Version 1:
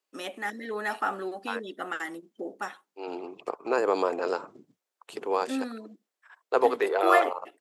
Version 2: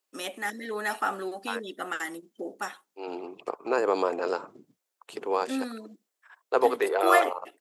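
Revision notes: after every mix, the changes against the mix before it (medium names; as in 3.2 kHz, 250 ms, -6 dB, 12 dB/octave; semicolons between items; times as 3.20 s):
first voice: add treble shelf 5.1 kHz +10 dB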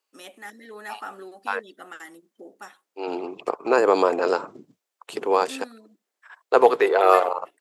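first voice -8.0 dB; second voice +7.0 dB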